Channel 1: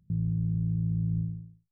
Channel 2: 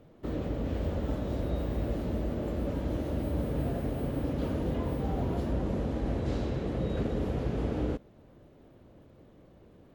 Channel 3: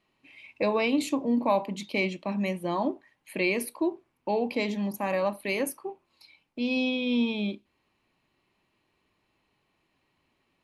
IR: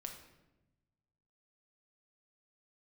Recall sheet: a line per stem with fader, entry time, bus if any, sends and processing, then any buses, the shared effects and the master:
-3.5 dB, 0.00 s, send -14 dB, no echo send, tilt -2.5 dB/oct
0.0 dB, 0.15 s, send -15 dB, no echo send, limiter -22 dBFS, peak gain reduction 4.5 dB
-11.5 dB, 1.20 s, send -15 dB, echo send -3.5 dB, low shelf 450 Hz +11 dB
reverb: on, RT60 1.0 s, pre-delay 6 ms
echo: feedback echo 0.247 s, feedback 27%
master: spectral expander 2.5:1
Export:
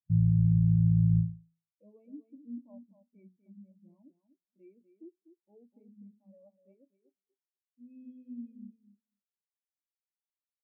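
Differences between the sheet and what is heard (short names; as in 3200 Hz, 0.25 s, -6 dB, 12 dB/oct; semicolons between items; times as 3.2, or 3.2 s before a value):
stem 2: muted; stem 3 -11.5 dB -> -17.5 dB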